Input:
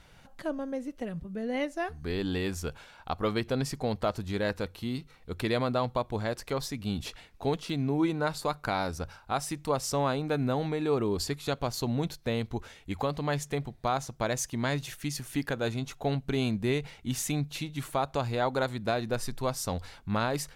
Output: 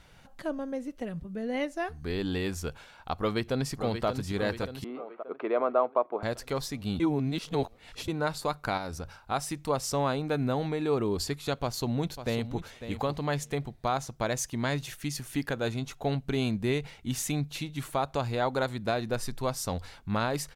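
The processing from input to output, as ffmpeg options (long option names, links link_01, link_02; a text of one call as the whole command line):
ffmpeg -i in.wav -filter_complex "[0:a]asplit=2[link_01][link_02];[link_02]afade=type=in:start_time=3.17:duration=0.01,afade=type=out:start_time=4.06:duration=0.01,aecho=0:1:580|1160|1740|2320|2900|3480|4060:0.398107|0.218959|0.120427|0.0662351|0.0364293|0.0200361|0.0110199[link_03];[link_01][link_03]amix=inputs=2:normalize=0,asettb=1/sr,asplit=3[link_04][link_05][link_06];[link_04]atrim=end=4.844[link_07];[link_05]atrim=start=4.84:end=6.23,asetpts=PTS-STARTPTS,afade=type=in:duration=0.004:curve=qsin,afade=type=out:start_time=1.386:duration=0.004:curve=qsin,highpass=frequency=300:width=0.5412,highpass=frequency=300:width=1.3066,equalizer=frequency=410:width_type=q:width=4:gain=3,equalizer=frequency=640:width_type=q:width=4:gain=6,equalizer=frequency=1200:width_type=q:width=4:gain=6,equalizer=frequency=1800:width_type=q:width=4:gain=-8,lowpass=frequency=2100:width=0.5412,lowpass=frequency=2100:width=1.3066[link_08];[link_06]atrim=start=6.226[link_09];[link_07][link_08]acrossfade=duration=0.004:curve1=hsin:curve2=qsin[link_10];[link_10][link_09]acrossfade=duration=0.004:curve1=qsin:curve2=hsin,asettb=1/sr,asplit=3[link_11][link_12][link_13];[link_11]atrim=end=8.774[link_14];[link_12]atrim=start=8.77:end=9.22,asetpts=PTS-STARTPTS,afade=type=in:duration=0.004:curve=qsin,afade=type=out:start_time=0.446:duration=0.004:curve=qsin,acompressor=threshold=-31dB:ratio=6:attack=3.2:release=140:knee=1:detection=peak[link_15];[link_13]atrim=start=9.216[link_16];[link_14][link_15]acrossfade=duration=0.004:curve1=hsin:curve2=qsin[link_17];[link_17][link_16]acrossfade=duration=0.004:curve1=qsin:curve2=hsin,asplit=2[link_18][link_19];[link_19]afade=type=in:start_time=11.61:duration=0.01,afade=type=out:start_time=12.61:duration=0.01,aecho=0:1:550|1100:0.281838|0.0281838[link_20];[link_18][link_20]amix=inputs=2:normalize=0,asplit=3[link_21][link_22][link_23];[link_21]atrim=end=7.002[link_24];[link_22]atrim=start=6.998:end=8.082,asetpts=PTS-STARTPTS,areverse[link_25];[link_23]atrim=start=8.078[link_26];[link_24][link_25]acrossfade=duration=0.004:curve1=hsin:curve2=hsin[link_27];[link_27][link_26]acrossfade=duration=0.004:curve1=hsin:curve2=hsin" out.wav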